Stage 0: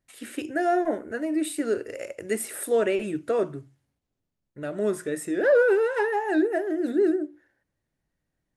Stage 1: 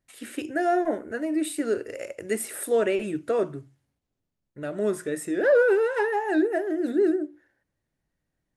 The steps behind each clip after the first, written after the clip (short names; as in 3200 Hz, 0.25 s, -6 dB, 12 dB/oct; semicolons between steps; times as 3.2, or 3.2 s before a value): nothing audible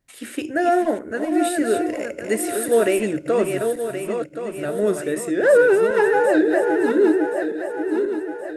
regenerating reverse delay 0.537 s, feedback 64%, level -6 dB; gain +5 dB